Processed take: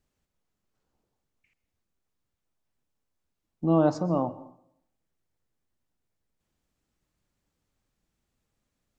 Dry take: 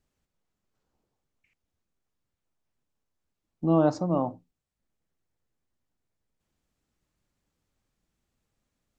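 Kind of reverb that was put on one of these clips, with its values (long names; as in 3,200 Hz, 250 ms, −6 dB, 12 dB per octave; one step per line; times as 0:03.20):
dense smooth reverb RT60 0.71 s, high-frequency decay 0.65×, pre-delay 110 ms, DRR 17.5 dB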